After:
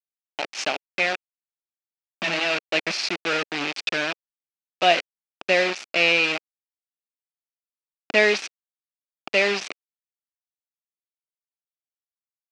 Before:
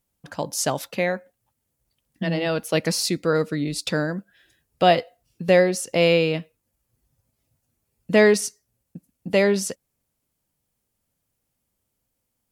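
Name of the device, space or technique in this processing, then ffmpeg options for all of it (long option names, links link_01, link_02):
hand-held game console: -af "acrusher=bits=3:mix=0:aa=0.000001,highpass=400,equalizer=frequency=490:width_type=q:width=4:gain=-8,equalizer=frequency=1000:width_type=q:width=4:gain=-5,equalizer=frequency=2500:width_type=q:width=4:gain=9,lowpass=frequency=5300:width=0.5412,lowpass=frequency=5300:width=1.3066"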